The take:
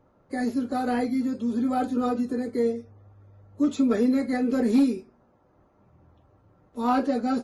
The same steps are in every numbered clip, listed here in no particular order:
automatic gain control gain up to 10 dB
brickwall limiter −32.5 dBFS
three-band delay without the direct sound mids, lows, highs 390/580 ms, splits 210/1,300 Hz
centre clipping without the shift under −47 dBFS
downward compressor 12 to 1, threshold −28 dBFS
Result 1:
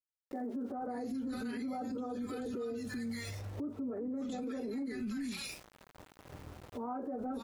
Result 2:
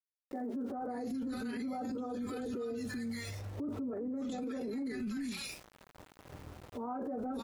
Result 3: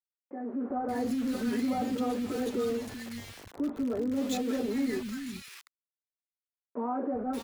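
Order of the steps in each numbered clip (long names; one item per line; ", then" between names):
automatic gain control, then three-band delay without the direct sound, then centre clipping without the shift, then downward compressor, then brickwall limiter
automatic gain control, then three-band delay without the direct sound, then centre clipping without the shift, then brickwall limiter, then downward compressor
downward compressor, then brickwall limiter, then centre clipping without the shift, then automatic gain control, then three-band delay without the direct sound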